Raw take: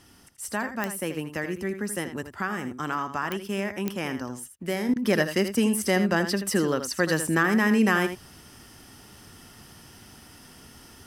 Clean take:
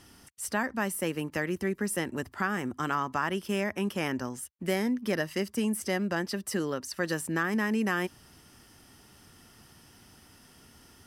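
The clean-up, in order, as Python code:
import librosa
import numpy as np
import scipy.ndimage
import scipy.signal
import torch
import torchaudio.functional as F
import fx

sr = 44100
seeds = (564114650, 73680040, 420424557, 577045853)

y = fx.fix_declick_ar(x, sr, threshold=10.0)
y = fx.fix_interpolate(y, sr, at_s=(4.94,), length_ms=19.0)
y = fx.fix_echo_inverse(y, sr, delay_ms=81, level_db=-10.0)
y = fx.gain(y, sr, db=fx.steps((0.0, 0.0), (4.89, -6.5)))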